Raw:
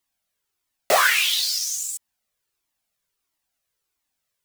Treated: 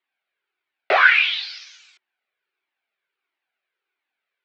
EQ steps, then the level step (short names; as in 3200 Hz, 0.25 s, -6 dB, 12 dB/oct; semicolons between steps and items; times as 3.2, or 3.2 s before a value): air absorption 190 m; speaker cabinet 340–3800 Hz, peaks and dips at 380 Hz +9 dB, 770 Hz +4 dB, 1500 Hz +9 dB, 2300 Hz +8 dB; high shelf 2700 Hz +9.5 dB; -2.5 dB